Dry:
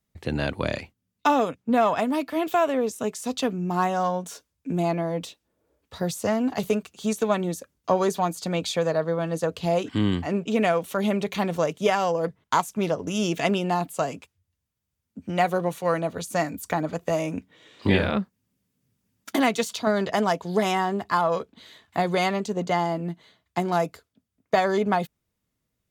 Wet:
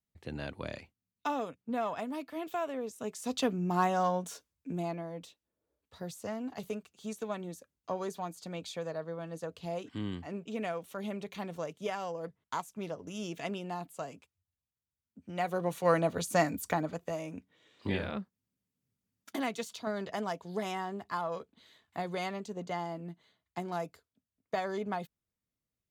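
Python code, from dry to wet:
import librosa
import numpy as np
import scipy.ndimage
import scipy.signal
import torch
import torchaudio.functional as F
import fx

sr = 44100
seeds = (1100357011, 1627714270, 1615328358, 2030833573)

y = fx.gain(x, sr, db=fx.line((2.92, -13.0), (3.38, -4.5), (4.26, -4.5), (5.1, -14.0), (15.26, -14.0), (15.9, -2.0), (16.57, -2.0), (17.17, -12.5)))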